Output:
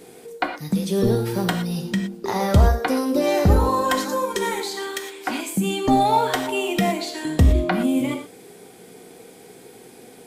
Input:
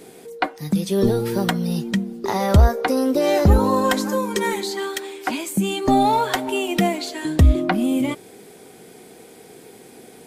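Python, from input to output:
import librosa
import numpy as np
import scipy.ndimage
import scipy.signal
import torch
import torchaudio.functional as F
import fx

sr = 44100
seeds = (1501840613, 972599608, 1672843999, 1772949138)

y = fx.rev_gated(x, sr, seeds[0], gate_ms=140, shape='flat', drr_db=4.5)
y = y * librosa.db_to_amplitude(-2.0)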